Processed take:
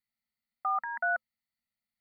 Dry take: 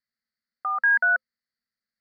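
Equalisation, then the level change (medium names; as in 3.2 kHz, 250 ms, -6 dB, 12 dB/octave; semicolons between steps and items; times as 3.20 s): Butterworth band-stop 1.1 kHz, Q 4.7; static phaser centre 1.6 kHz, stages 6; +3.0 dB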